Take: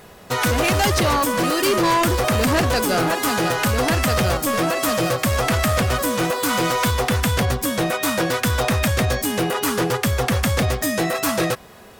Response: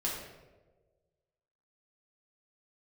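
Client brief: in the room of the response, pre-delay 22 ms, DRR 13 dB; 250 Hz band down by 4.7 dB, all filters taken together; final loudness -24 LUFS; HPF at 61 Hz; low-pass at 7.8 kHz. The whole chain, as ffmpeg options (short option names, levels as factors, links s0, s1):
-filter_complex "[0:a]highpass=61,lowpass=7800,equalizer=f=250:t=o:g=-6.5,asplit=2[s0][s1];[1:a]atrim=start_sample=2205,adelay=22[s2];[s1][s2]afir=irnorm=-1:irlink=0,volume=0.133[s3];[s0][s3]amix=inputs=2:normalize=0,volume=0.708"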